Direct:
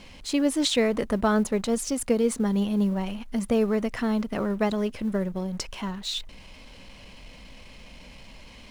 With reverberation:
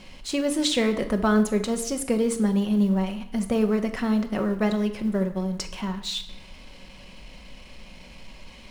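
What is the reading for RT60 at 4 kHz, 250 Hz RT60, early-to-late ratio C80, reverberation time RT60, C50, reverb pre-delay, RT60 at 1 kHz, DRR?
0.70 s, 0.95 s, 15.0 dB, 0.80 s, 12.0 dB, 5 ms, 0.80 s, 6.0 dB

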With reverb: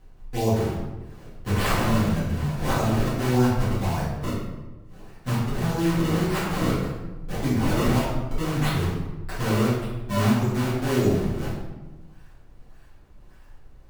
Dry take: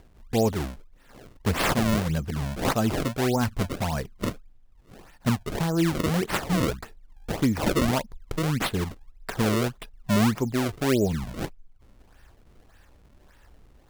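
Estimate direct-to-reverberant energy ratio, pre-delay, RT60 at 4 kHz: -11.0 dB, 4 ms, 0.75 s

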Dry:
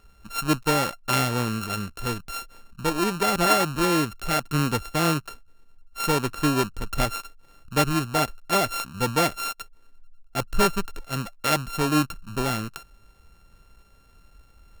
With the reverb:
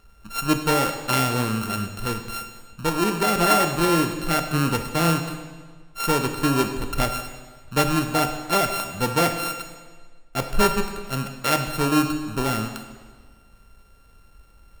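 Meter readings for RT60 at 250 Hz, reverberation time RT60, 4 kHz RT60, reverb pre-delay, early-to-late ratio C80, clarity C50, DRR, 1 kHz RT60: 1.5 s, 1.5 s, 1.4 s, 20 ms, 9.5 dB, 8.0 dB, 6.0 dB, 1.5 s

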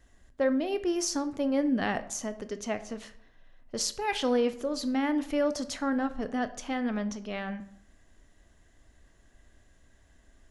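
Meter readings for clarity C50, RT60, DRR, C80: 15.0 dB, 0.70 s, 11.5 dB, 18.0 dB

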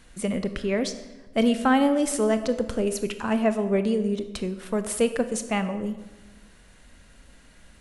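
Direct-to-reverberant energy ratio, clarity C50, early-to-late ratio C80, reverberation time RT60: 9.5 dB, 11.5 dB, 13.5 dB, 1.2 s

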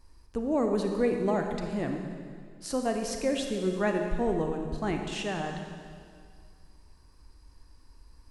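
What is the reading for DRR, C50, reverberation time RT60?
3.5 dB, 4.0 dB, 2.1 s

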